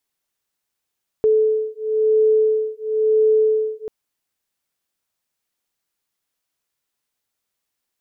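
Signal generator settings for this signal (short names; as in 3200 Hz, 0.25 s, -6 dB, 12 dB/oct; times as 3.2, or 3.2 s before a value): beating tones 434 Hz, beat 0.98 Hz, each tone -17.5 dBFS 2.64 s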